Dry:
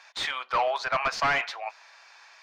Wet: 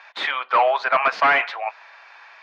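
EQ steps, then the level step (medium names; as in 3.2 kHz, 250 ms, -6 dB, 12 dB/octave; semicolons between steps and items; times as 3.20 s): high-pass 98 Hz; three-band isolator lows -20 dB, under 170 Hz, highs -22 dB, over 3.4 kHz; bass shelf 130 Hz -12 dB; +8.5 dB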